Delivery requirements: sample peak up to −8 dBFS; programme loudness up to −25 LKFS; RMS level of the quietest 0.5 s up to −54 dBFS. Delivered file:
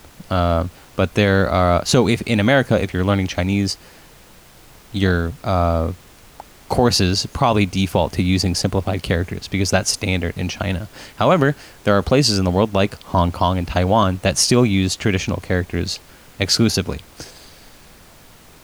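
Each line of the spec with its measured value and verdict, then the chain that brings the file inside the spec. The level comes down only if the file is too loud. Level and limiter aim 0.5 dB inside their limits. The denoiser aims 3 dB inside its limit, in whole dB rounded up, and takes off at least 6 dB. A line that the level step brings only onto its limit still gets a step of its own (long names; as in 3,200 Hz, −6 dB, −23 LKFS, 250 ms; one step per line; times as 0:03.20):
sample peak −3.5 dBFS: out of spec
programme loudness −18.5 LKFS: out of spec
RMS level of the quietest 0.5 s −46 dBFS: out of spec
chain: broadband denoise 6 dB, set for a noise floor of −46 dBFS
level −7 dB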